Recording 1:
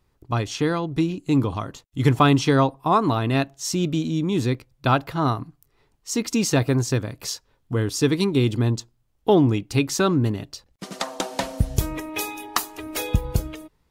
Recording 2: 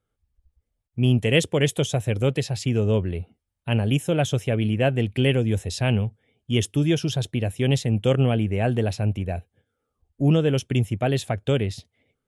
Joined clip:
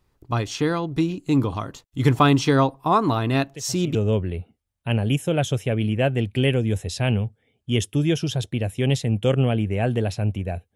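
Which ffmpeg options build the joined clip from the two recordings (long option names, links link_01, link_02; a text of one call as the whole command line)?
ffmpeg -i cue0.wav -i cue1.wav -filter_complex "[1:a]asplit=2[link_01][link_02];[0:a]apad=whole_dur=10.75,atrim=end=10.75,atrim=end=3.952[link_03];[link_02]atrim=start=2.758:end=9.56[link_04];[link_01]atrim=start=2.34:end=2.76,asetpts=PTS-STARTPTS,volume=-13dB,afade=type=in:duration=0.004:curve=hsin,afade=type=out:start_time=0.416:duration=0.004:curve=hsin,adelay=155673S[link_05];[link_03][link_04]acrossfade=duration=0.004:curve1=hsin:curve2=hsin[link_06];[link_06][link_05]amix=inputs=2:normalize=0" out.wav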